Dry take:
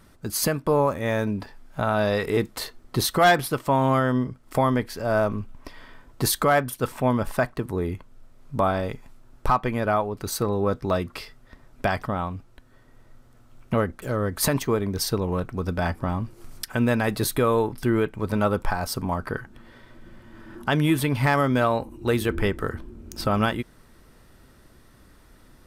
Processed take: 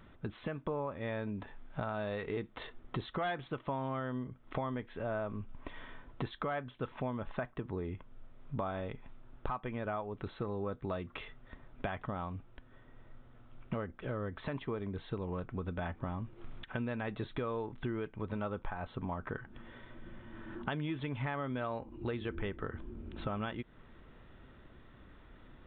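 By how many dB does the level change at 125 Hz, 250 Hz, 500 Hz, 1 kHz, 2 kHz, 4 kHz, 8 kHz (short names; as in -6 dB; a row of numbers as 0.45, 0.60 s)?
-13.5 dB, -14.0 dB, -15.0 dB, -15.5 dB, -15.0 dB, -18.5 dB, under -40 dB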